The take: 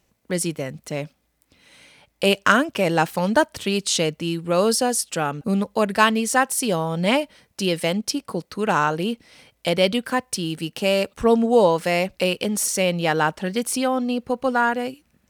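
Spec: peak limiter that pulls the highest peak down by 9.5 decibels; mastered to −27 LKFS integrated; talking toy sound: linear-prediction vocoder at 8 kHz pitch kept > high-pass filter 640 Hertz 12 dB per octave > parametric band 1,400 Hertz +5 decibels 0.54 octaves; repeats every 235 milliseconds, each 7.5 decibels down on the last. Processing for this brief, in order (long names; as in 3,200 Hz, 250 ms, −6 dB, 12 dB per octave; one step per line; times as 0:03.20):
brickwall limiter −11.5 dBFS
repeating echo 235 ms, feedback 42%, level −7.5 dB
linear-prediction vocoder at 8 kHz pitch kept
high-pass filter 640 Hz 12 dB per octave
parametric band 1,400 Hz +5 dB 0.54 octaves
level +0.5 dB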